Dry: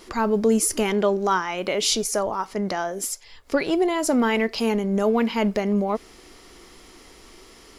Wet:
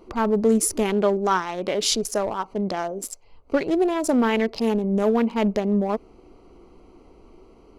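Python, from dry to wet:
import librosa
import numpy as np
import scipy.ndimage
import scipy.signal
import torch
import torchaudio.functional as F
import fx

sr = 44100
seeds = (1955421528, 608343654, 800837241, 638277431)

y = fx.wiener(x, sr, points=25)
y = y * 10.0 ** (1.0 / 20.0)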